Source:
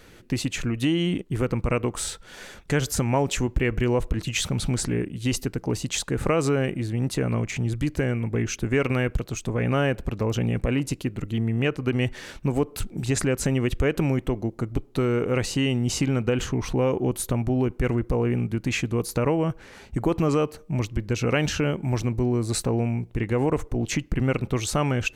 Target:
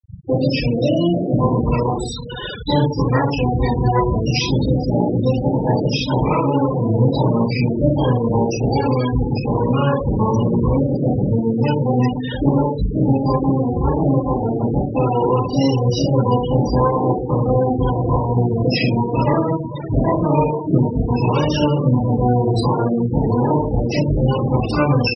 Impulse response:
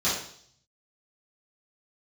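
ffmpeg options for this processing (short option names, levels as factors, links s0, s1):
-filter_complex "[0:a]asplit=3[s0][s1][s2];[s1]asetrate=35002,aresample=44100,atempo=1.25992,volume=0.126[s3];[s2]asetrate=88200,aresample=44100,atempo=0.5,volume=0.891[s4];[s0][s3][s4]amix=inputs=3:normalize=0,acompressor=threshold=0.0282:ratio=12,asplit=2[s5][s6];[s6]adelay=466.5,volume=0.251,highshelf=f=4000:g=-10.5[s7];[s5][s7]amix=inputs=2:normalize=0[s8];[1:a]atrim=start_sample=2205,afade=t=out:st=0.29:d=0.01,atrim=end_sample=13230,asetrate=34839,aresample=44100[s9];[s8][s9]afir=irnorm=-1:irlink=0,afftfilt=real='re*gte(hypot(re,im),0.126)':imag='im*gte(hypot(re,im),0.126)':win_size=1024:overlap=0.75,volume=1.33"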